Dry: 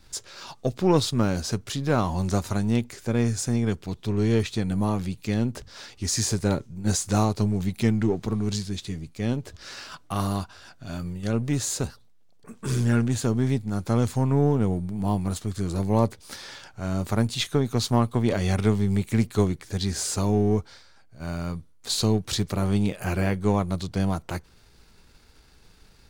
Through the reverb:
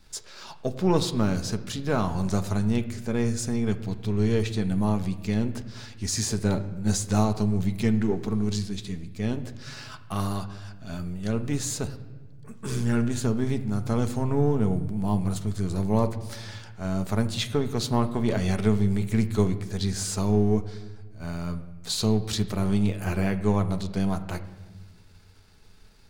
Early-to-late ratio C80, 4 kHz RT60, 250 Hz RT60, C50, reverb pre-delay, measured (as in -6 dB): 15.0 dB, 1.0 s, 1.9 s, 13.5 dB, 5 ms